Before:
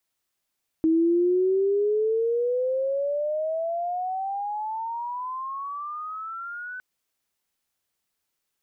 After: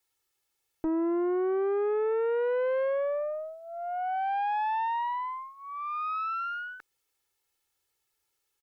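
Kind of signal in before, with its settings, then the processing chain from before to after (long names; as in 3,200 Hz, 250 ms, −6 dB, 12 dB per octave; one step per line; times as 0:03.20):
pitch glide with a swell sine, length 5.96 s, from 318 Hz, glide +27 semitones, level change −16 dB, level −17 dB
comb filter 2.3 ms, depth 87%
brickwall limiter −19 dBFS
tube saturation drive 25 dB, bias 0.45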